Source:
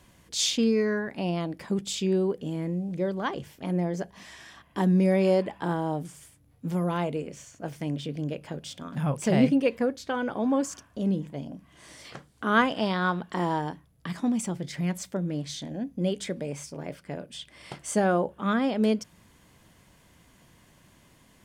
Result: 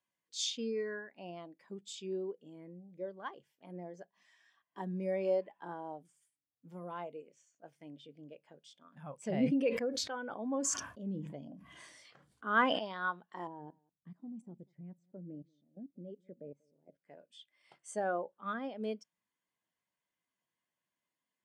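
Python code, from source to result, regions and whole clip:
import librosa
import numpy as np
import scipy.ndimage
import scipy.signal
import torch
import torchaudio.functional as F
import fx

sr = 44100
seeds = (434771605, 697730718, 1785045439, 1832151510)

y = fx.chain(x, sr, fx.low_shelf(hz=130.0, db=11.5),
    fx.sustainer(db_per_s=22.0), at=(9.25, 12.79))
y = fx.chain(y, sr, fx.level_steps(step_db=17),
    fx.tilt_shelf(db=9.5, hz=780.0),
    fx.echo_single(ms=189, db=-18.5), at=(13.47, 17.01))
y = fx.highpass(y, sr, hz=740.0, slope=6)
y = fx.spectral_expand(y, sr, expansion=1.5)
y = y * librosa.db_to_amplitude(-6.0)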